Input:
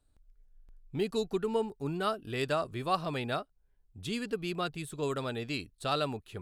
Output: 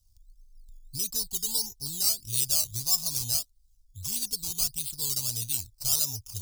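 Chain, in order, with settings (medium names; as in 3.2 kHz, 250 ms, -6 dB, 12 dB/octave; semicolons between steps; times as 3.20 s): in parallel at +1 dB: peak limiter -26 dBFS, peak gain reduction 10.5 dB; on the sum: decimation with a swept rate 10×, swing 60% 1.6 Hz; FFT filter 110 Hz 0 dB, 150 Hz -13 dB, 390 Hz -26 dB, 910 Hz -18 dB, 1.8 kHz -28 dB, 4.9 kHz +11 dB, 13 kHz +14 dB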